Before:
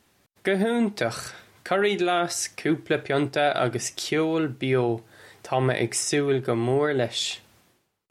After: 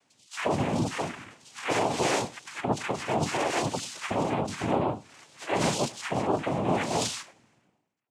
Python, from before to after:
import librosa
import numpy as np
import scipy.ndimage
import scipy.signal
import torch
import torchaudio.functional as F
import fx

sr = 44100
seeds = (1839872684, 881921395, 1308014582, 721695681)

y = fx.spec_delay(x, sr, highs='early', ms=356)
y = fx.noise_vocoder(y, sr, seeds[0], bands=4)
y = y + 10.0 ** (-23.5 / 20.0) * np.pad(y, (int(100 * sr / 1000.0), 0))[:len(y)]
y = F.gain(torch.from_numpy(y), -3.0).numpy()